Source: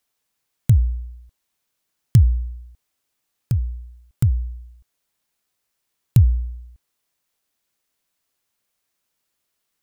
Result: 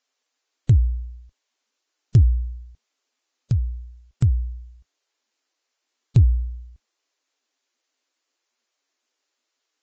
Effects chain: saturation -5 dBFS, distortion -22 dB; Vorbis 32 kbps 16 kHz

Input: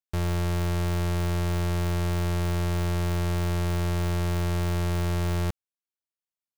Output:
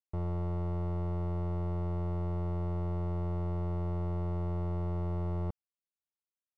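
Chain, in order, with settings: Savitzky-Golay filter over 65 samples; trim -7 dB

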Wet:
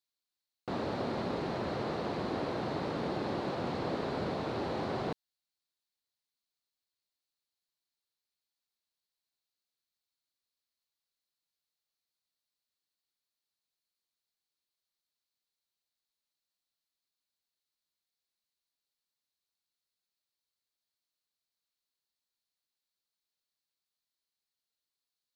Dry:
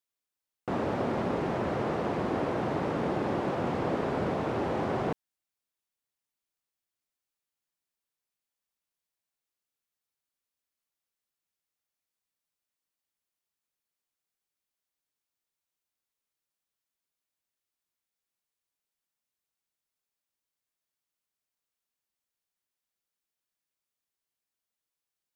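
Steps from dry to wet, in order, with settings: peaking EQ 4.2 kHz +13 dB 0.51 oct; trim -5 dB

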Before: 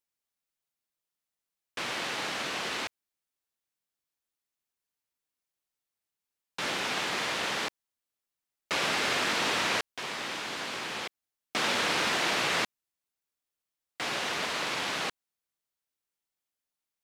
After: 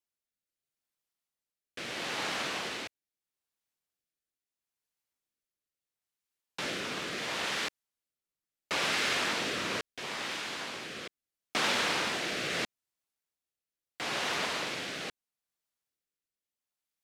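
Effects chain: rotary cabinet horn 0.75 Hz

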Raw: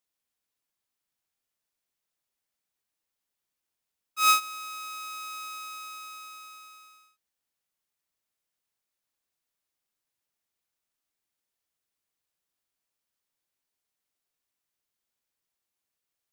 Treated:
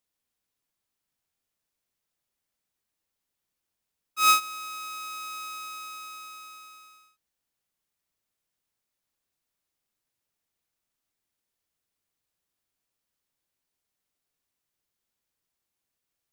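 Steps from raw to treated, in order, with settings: bass shelf 320 Hz +5.5 dB; trim +1 dB

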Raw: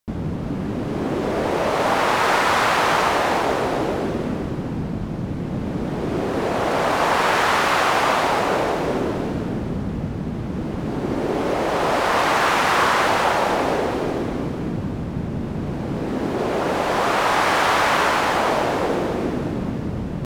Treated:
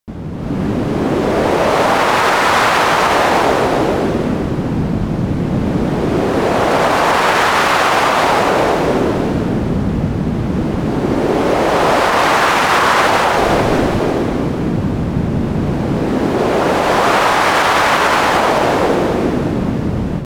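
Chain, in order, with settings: peak limiter -11 dBFS, peak gain reduction 5.5 dB; level rider gain up to 11.5 dB; 13.36–14.00 s: frequency shift -150 Hz; trim -1 dB

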